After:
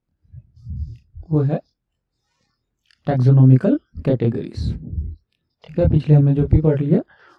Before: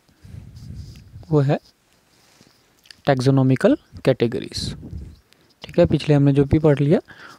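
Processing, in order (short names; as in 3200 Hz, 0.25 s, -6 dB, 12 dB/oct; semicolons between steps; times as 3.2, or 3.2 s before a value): chorus voices 2, 0.57 Hz, delay 25 ms, depth 1.6 ms; RIAA curve playback; spectral noise reduction 19 dB; gain -3.5 dB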